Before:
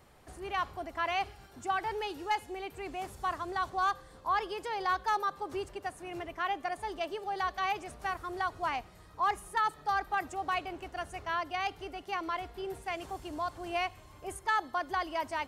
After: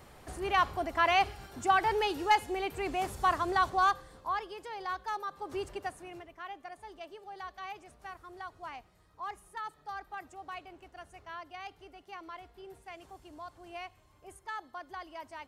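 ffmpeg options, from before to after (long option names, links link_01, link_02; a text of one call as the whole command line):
ffmpeg -i in.wav -af "volume=14dB,afade=type=out:start_time=3.54:duration=0.9:silence=0.251189,afade=type=in:start_time=5.29:duration=0.44:silence=0.398107,afade=type=out:start_time=5.73:duration=0.53:silence=0.237137" out.wav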